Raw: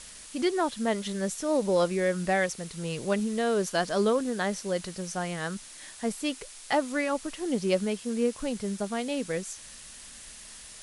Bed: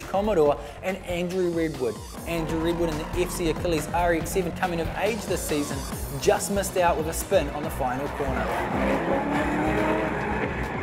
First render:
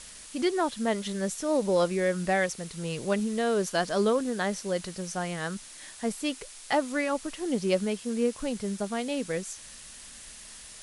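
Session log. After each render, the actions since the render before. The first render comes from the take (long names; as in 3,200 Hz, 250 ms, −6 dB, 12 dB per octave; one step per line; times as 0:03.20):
no processing that can be heard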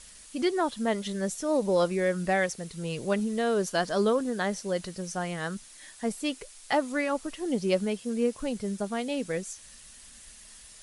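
broadband denoise 6 dB, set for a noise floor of −47 dBFS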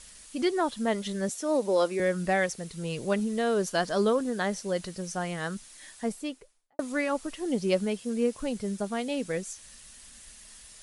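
0:01.29–0:02.00: high-pass filter 230 Hz 24 dB per octave
0:05.93–0:06.79: fade out and dull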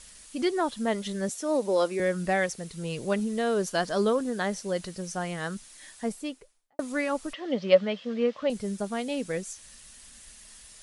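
0:07.33–0:08.50: loudspeaker in its box 180–4,700 Hz, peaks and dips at 380 Hz −7 dB, 580 Hz +10 dB, 1,200 Hz +7 dB, 1,900 Hz +7 dB, 3,200 Hz +6 dB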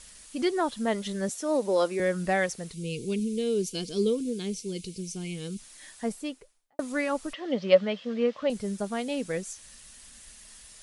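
0:02.73–0:05.59: gain on a spectral selection 500–2,100 Hz −21 dB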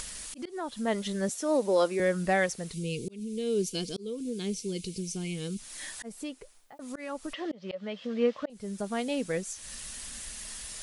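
volume swells 530 ms
upward compression, threshold −31 dBFS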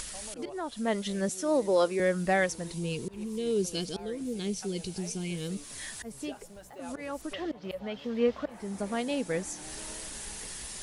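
mix in bed −24 dB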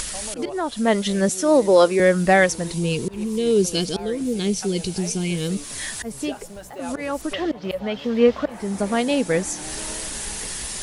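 level +10.5 dB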